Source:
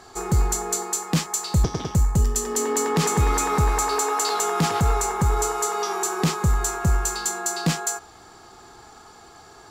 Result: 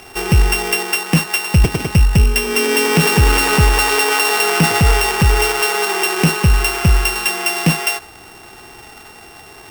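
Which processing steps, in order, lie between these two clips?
samples sorted by size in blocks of 16 samples
level +8 dB

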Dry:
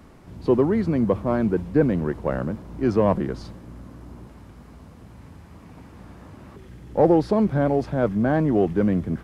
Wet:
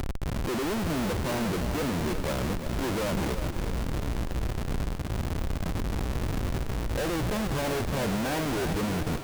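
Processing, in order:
low-shelf EQ 320 Hz −8 dB
upward compression, threshold −32 dBFS
comparator with hysteresis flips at −35.5 dBFS
echo with a time of its own for lows and highs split 340 Hz, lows 628 ms, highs 353 ms, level −9 dB
level −1.5 dB

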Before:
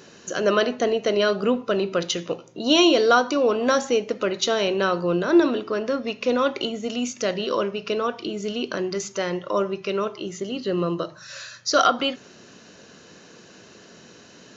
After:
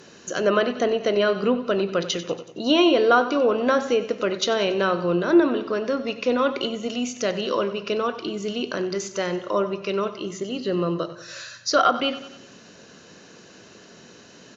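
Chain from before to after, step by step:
repeating echo 93 ms, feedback 52%, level −14.5 dB
treble cut that deepens with the level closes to 2,800 Hz, closed at −15 dBFS

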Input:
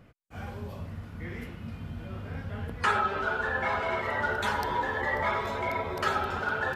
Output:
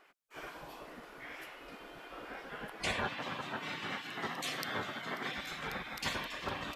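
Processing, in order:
gate on every frequency bin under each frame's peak −15 dB weak
0:03.04–0:05.38: high-pass filter 110 Hz 24 dB per octave
level +1.5 dB

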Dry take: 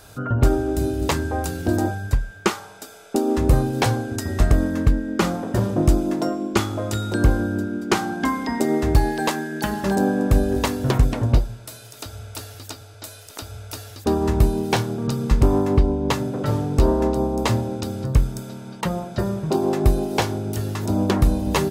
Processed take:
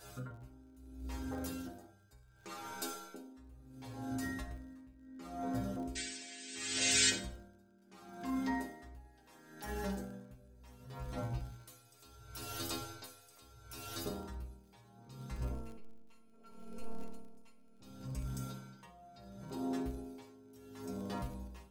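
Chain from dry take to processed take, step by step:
automatic gain control gain up to 11.5 dB
brickwall limiter −13.5 dBFS, peak gain reduction 12.5 dB
downward compressor 5 to 1, threshold −29 dBFS, peak gain reduction 11.5 dB
0:05.95–0:07.10: sound drawn into the spectrogram noise 1,400–8,700 Hz −23 dBFS
0:15.51–0:17.81: phases set to zero 226 Hz
stiff-string resonator 61 Hz, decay 0.77 s, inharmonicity 0.008
surface crackle 44 per second −48 dBFS
convolution reverb RT60 0.55 s, pre-delay 37 ms, DRR 9.5 dB
tremolo with a sine in dB 0.71 Hz, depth 22 dB
level +5 dB

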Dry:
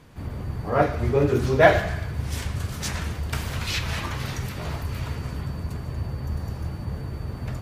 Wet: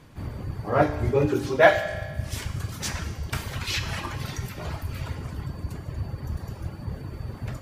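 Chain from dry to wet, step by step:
reverb reduction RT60 1.4 s
0:01.28–0:01.95: low-shelf EQ 150 Hz −11.5 dB
convolution reverb RT60 1.5 s, pre-delay 4 ms, DRR 7.5 dB

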